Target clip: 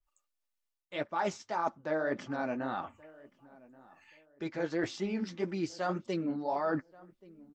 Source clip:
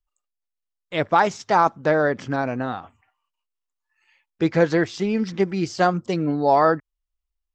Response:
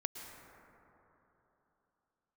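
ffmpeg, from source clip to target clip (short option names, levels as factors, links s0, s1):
-filter_complex "[0:a]lowshelf=f=140:g=-7.5,aecho=1:1:3.4:0.31,areverse,acompressor=threshold=0.0178:ratio=4,areverse,flanger=delay=4.8:depth=8.1:regen=-34:speed=1.8:shape=sinusoidal,asplit=2[s0][s1];[s1]adelay=1129,lowpass=f=1300:p=1,volume=0.0841,asplit=2[s2][s3];[s3]adelay=1129,lowpass=f=1300:p=1,volume=0.32[s4];[s0][s2][s4]amix=inputs=3:normalize=0,adynamicequalizer=threshold=0.00316:dfrequency=1900:dqfactor=0.7:tfrequency=1900:tqfactor=0.7:attack=5:release=100:ratio=0.375:range=2:mode=cutabove:tftype=highshelf,volume=1.88"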